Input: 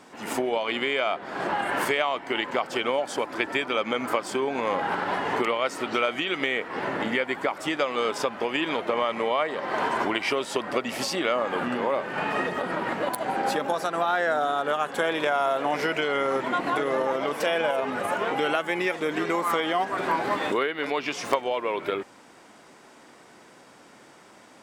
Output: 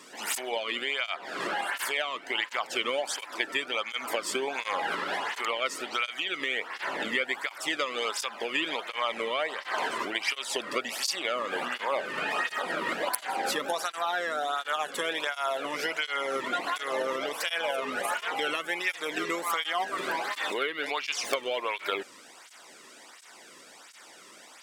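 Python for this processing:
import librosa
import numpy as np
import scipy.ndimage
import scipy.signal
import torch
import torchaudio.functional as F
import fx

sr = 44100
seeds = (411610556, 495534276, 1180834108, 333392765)

y = fx.tilt_shelf(x, sr, db=-7.0, hz=1500.0)
y = fx.rider(y, sr, range_db=10, speed_s=0.5)
y = fx.flanger_cancel(y, sr, hz=1.4, depth_ms=1.4)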